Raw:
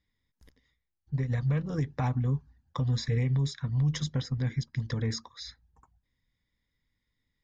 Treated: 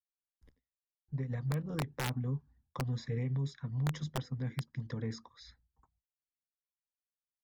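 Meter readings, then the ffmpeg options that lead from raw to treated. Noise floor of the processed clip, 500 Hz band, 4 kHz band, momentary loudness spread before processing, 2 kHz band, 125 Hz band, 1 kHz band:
below −85 dBFS, −4.5 dB, −8.0 dB, 9 LU, −3.0 dB, −7.5 dB, −4.0 dB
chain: -filter_complex "[0:a]highshelf=frequency=2100:gain=-10,agate=range=-33dB:threshold=-57dB:ratio=3:detection=peak,acrossover=split=110|3200[link_01][link_02][link_03];[link_01]acompressor=threshold=-49dB:ratio=12[link_04];[link_04][link_02][link_03]amix=inputs=3:normalize=0,aeval=exprs='(mod(12.6*val(0)+1,2)-1)/12.6':channel_layout=same,volume=-4.5dB"

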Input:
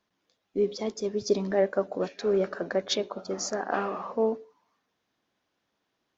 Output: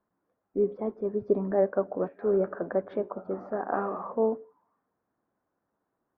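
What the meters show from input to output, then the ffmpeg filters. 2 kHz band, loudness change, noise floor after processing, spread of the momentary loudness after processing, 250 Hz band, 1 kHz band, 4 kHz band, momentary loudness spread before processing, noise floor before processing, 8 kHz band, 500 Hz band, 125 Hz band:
−6.5 dB, −0.5 dB, −82 dBFS, 8 LU, 0.0 dB, −0.5 dB, below −30 dB, 6 LU, −80 dBFS, can't be measured, 0.0 dB, 0.0 dB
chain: -af "lowpass=frequency=1400:width=0.5412,lowpass=frequency=1400:width=1.3066"

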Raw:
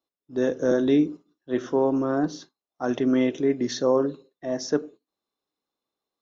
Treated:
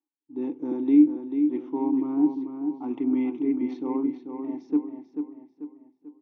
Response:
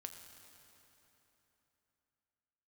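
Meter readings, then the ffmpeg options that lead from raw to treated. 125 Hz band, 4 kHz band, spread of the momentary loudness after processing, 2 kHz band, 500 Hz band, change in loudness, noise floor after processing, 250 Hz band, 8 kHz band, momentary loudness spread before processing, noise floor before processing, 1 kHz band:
below −10 dB, below −20 dB, 16 LU, below −15 dB, −10.5 dB, −1.0 dB, −74 dBFS, +2.5 dB, can't be measured, 10 LU, below −85 dBFS, −6.0 dB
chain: -filter_complex "[0:a]adynamicsmooth=sensitivity=1.5:basefreq=3200,asplit=3[link_01][link_02][link_03];[link_01]bandpass=frequency=300:width_type=q:width=8,volume=0dB[link_04];[link_02]bandpass=frequency=870:width_type=q:width=8,volume=-6dB[link_05];[link_03]bandpass=frequency=2240:width_type=q:width=8,volume=-9dB[link_06];[link_04][link_05][link_06]amix=inputs=3:normalize=0,asplit=2[link_07][link_08];[link_08]adelay=440,lowpass=frequency=4300:poles=1,volume=-7dB,asplit=2[link_09][link_10];[link_10]adelay=440,lowpass=frequency=4300:poles=1,volume=0.43,asplit=2[link_11][link_12];[link_12]adelay=440,lowpass=frequency=4300:poles=1,volume=0.43,asplit=2[link_13][link_14];[link_14]adelay=440,lowpass=frequency=4300:poles=1,volume=0.43,asplit=2[link_15][link_16];[link_16]adelay=440,lowpass=frequency=4300:poles=1,volume=0.43[link_17];[link_07][link_09][link_11][link_13][link_15][link_17]amix=inputs=6:normalize=0,volume=5.5dB"

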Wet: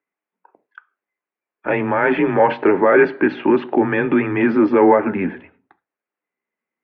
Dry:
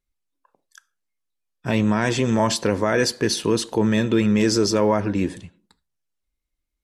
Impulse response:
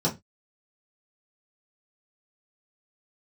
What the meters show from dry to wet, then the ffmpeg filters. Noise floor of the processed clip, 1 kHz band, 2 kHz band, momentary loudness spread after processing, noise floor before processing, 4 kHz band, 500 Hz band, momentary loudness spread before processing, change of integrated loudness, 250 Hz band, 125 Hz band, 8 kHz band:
below −85 dBFS, +8.0 dB, +7.0 dB, 9 LU, −80 dBFS, below −10 dB, +6.0 dB, 6 LU, +4.0 dB, +3.0 dB, −5.5 dB, below −40 dB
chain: -filter_complex "[0:a]asplit=2[link_01][link_02];[1:a]atrim=start_sample=2205[link_03];[link_02][link_03]afir=irnorm=-1:irlink=0,volume=-27dB[link_04];[link_01][link_04]amix=inputs=2:normalize=0,apsyclip=13dB,highpass=frequency=370:width_type=q:width=0.5412,highpass=frequency=370:width_type=q:width=1.307,lowpass=frequency=2400:width_type=q:width=0.5176,lowpass=frequency=2400:width_type=q:width=0.7071,lowpass=frequency=2400:width_type=q:width=1.932,afreqshift=-92,volume=-3.5dB"

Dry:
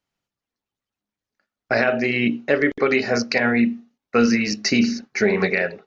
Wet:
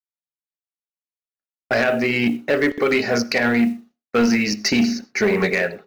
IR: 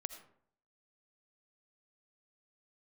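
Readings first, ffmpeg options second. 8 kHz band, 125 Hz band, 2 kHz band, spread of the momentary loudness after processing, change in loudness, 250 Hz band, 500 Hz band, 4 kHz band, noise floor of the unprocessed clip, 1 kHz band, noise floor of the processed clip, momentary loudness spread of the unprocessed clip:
can't be measured, +0.5 dB, +0.5 dB, 3 LU, +0.5 dB, +1.0 dB, +0.5 dB, +1.5 dB, below −85 dBFS, +0.5 dB, below −85 dBFS, 4 LU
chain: -filter_complex "[0:a]acrusher=bits=8:mode=log:mix=0:aa=0.000001,agate=range=-33dB:threshold=-40dB:ratio=3:detection=peak,asoftclip=type=tanh:threshold=-13dB,asplit=2[link_01][link_02];[1:a]atrim=start_sample=2205,afade=type=out:start_time=0.18:duration=0.01,atrim=end_sample=8379[link_03];[link_02][link_03]afir=irnorm=-1:irlink=0,volume=-6.5dB[link_04];[link_01][link_04]amix=inputs=2:normalize=0"

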